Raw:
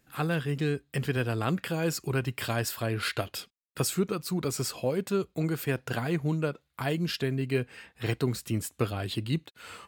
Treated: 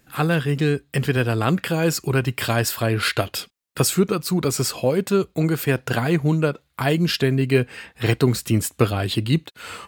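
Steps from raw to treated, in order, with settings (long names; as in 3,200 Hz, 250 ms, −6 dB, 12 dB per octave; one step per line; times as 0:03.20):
speech leveller 2 s
level +9 dB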